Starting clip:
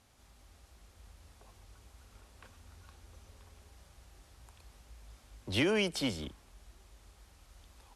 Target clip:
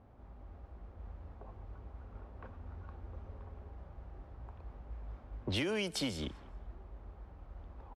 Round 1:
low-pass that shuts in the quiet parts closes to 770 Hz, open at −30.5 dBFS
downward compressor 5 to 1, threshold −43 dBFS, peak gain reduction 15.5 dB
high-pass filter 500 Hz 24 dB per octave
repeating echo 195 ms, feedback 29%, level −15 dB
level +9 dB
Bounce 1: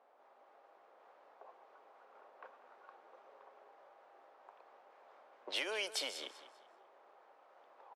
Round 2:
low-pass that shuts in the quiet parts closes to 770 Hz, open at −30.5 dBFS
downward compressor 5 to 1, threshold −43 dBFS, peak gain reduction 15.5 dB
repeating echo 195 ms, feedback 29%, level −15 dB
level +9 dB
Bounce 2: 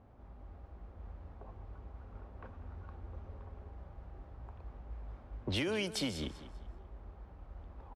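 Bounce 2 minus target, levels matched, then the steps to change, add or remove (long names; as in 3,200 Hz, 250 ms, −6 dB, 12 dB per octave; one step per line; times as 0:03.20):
echo-to-direct +12 dB
change: repeating echo 195 ms, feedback 29%, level −27 dB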